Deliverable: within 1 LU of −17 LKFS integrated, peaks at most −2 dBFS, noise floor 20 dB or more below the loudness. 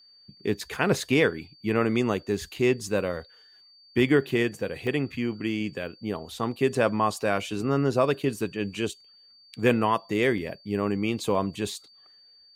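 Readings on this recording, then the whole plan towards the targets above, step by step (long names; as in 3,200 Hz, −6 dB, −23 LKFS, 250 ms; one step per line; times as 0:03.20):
number of dropouts 3; longest dropout 1.9 ms; interfering tone 4,600 Hz; level of the tone −53 dBFS; integrated loudness −27.0 LKFS; sample peak −8.5 dBFS; target loudness −17.0 LKFS
→ repair the gap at 0:04.87/0:06.75/0:10.38, 1.9 ms
notch filter 4,600 Hz, Q 30
level +10 dB
brickwall limiter −2 dBFS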